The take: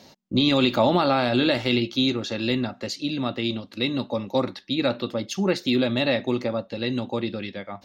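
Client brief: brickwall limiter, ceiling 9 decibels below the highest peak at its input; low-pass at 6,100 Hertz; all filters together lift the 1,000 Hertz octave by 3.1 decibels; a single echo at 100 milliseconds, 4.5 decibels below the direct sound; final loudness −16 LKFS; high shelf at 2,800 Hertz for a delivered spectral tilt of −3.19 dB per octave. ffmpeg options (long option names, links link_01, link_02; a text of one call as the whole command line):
ffmpeg -i in.wav -af "lowpass=6100,equalizer=frequency=1000:width_type=o:gain=3,highshelf=frequency=2800:gain=8,alimiter=limit=-13.5dB:level=0:latency=1,aecho=1:1:100:0.596,volume=8dB" out.wav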